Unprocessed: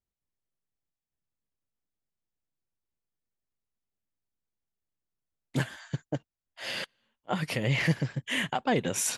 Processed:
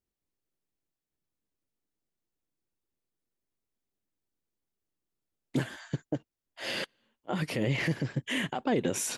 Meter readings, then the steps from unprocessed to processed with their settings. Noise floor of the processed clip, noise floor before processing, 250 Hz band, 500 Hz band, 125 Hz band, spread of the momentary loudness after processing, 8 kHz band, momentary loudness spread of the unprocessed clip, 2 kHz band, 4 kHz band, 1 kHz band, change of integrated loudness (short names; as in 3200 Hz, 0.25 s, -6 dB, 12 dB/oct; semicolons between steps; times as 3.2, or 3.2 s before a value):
under -85 dBFS, under -85 dBFS, +0.5 dB, 0.0 dB, -2.5 dB, 10 LU, -3.5 dB, 11 LU, -3.0 dB, -2.0 dB, -4.0 dB, -1.5 dB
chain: limiter -23 dBFS, peak gain reduction 8 dB; bell 330 Hz +8 dB 1.3 oct